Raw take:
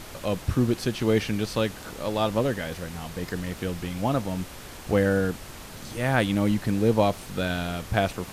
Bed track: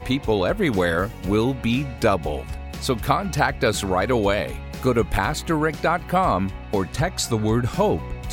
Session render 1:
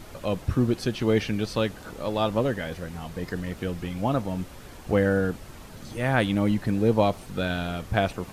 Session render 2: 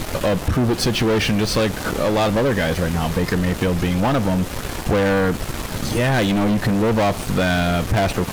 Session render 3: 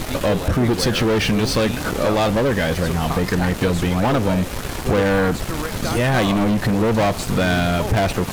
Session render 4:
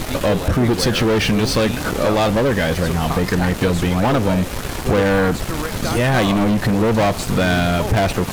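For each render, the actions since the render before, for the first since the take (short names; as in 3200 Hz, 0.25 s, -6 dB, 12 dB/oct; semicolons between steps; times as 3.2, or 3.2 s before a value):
denoiser 7 dB, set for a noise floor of -42 dBFS
sample leveller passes 5; compressor 4:1, threshold -17 dBFS, peak gain reduction 6 dB
add bed track -7.5 dB
gain +1.5 dB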